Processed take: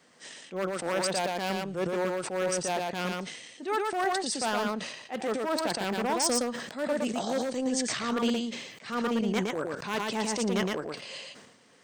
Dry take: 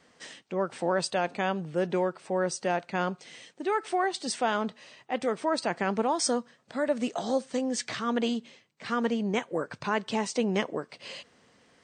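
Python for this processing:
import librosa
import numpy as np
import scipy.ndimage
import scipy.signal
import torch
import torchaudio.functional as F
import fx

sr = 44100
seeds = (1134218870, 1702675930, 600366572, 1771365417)

y = np.minimum(x, 2.0 * 10.0 ** (-21.0 / 20.0) - x)
y = scipy.signal.sosfilt(scipy.signal.butter(2, 110.0, 'highpass', fs=sr, output='sos'), y)
y = fx.high_shelf(y, sr, hz=7600.0, db=8.5)
y = fx.transient(y, sr, attack_db=-7, sustain_db=-11)
y = y + 10.0 ** (-3.0 / 20.0) * np.pad(y, (int(116 * sr / 1000.0), 0))[:len(y)]
y = fx.sustainer(y, sr, db_per_s=56.0)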